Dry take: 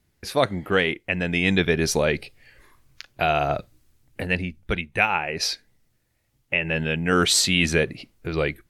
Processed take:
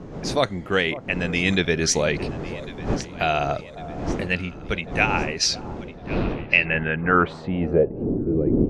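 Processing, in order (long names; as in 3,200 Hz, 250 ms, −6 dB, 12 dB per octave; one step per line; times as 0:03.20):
wind on the microphone 360 Hz −30 dBFS
delay that swaps between a low-pass and a high-pass 551 ms, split 1,100 Hz, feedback 69%, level −14 dB
low-pass filter sweep 6,700 Hz → 340 Hz, 0:05.82–0:08.20
level −1 dB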